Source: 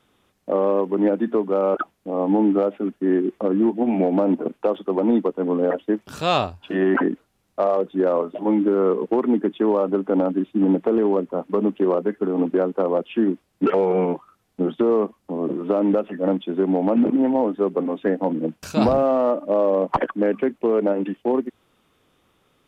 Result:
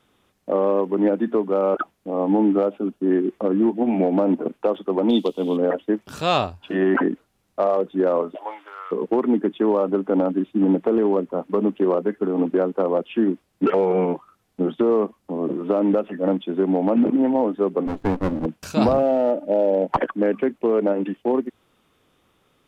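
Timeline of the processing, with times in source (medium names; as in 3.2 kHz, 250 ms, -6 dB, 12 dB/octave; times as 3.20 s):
2.70–3.11 s: peaking EQ 1.9 kHz -11 dB 0.48 oct
5.09–5.57 s: resonant high shelf 2.5 kHz +13.5 dB, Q 3
8.35–8.91 s: high-pass 530 Hz -> 1.4 kHz 24 dB/octave
17.87–18.46 s: sliding maximum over 33 samples
18.99–19.94 s: Butterworth band-stop 1.1 kHz, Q 2.5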